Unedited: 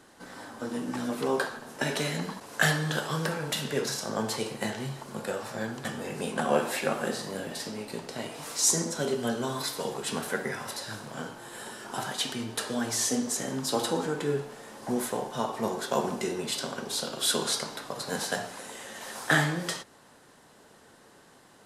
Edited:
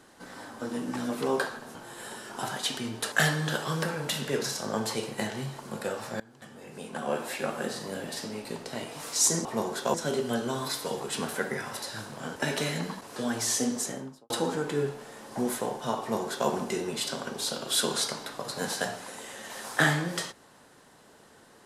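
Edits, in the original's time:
1.75–2.55 s: swap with 11.30–12.67 s
5.63–7.49 s: fade in, from -22 dB
13.27–13.81 s: studio fade out
15.51–16.00 s: copy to 8.88 s

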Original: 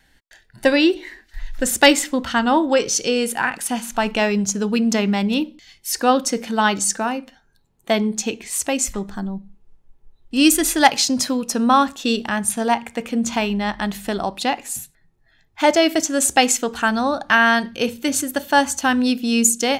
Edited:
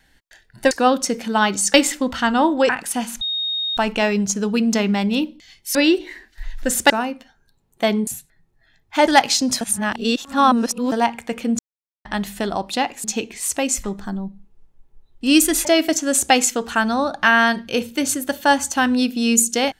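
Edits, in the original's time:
0.71–1.86 s: swap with 5.94–6.97 s
2.81–3.44 s: delete
3.96 s: add tone 3.72 kHz -20.5 dBFS 0.56 s
8.14–10.75 s: swap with 14.72–15.72 s
11.29–12.60 s: reverse
13.27–13.73 s: mute

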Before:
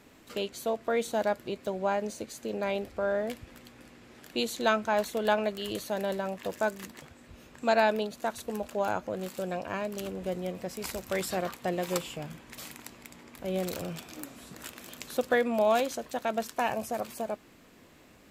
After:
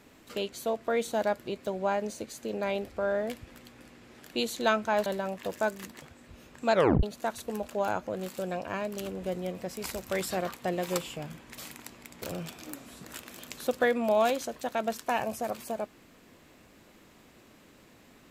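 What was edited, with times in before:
5.06–6.06 s: delete
7.73 s: tape stop 0.30 s
13.22–13.72 s: delete

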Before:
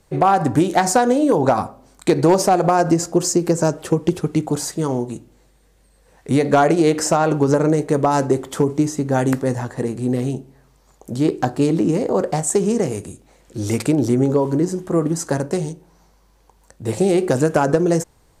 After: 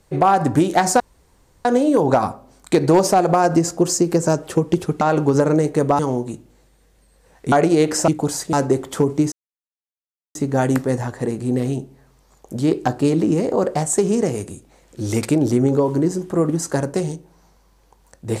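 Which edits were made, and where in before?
1.00 s: insert room tone 0.65 s
4.36–4.81 s: swap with 7.15–8.13 s
6.34–6.59 s: delete
8.92 s: insert silence 1.03 s

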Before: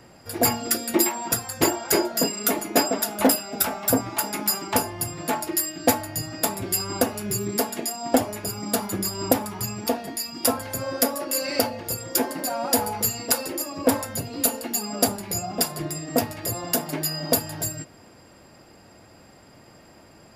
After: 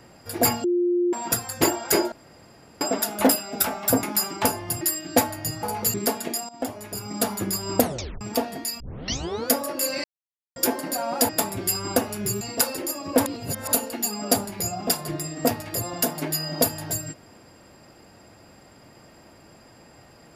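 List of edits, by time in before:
0.64–1.13 s: bleep 352 Hz -18.5 dBFS
2.12–2.81 s: room tone
4.03–4.34 s: delete
5.12–5.52 s: delete
6.34–7.46 s: swap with 12.81–13.12 s
8.01–8.75 s: fade in, from -17 dB
9.31 s: tape stop 0.42 s
10.32 s: tape start 0.72 s
11.56–12.08 s: mute
13.97–14.44 s: reverse

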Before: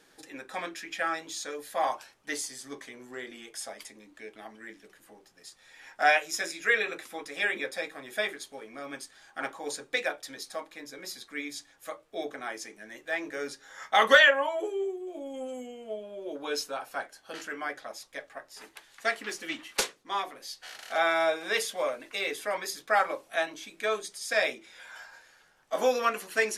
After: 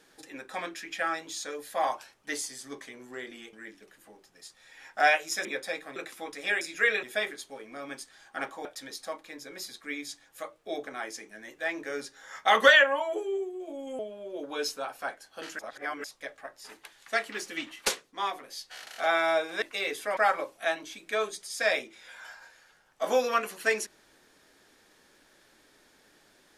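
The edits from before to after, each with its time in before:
3.53–4.55 s: delete
6.47–6.89 s: swap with 7.54–8.05 s
9.67–10.12 s: delete
15.46–15.91 s: delete
17.51–17.96 s: reverse
21.54–22.02 s: delete
22.57–22.88 s: delete

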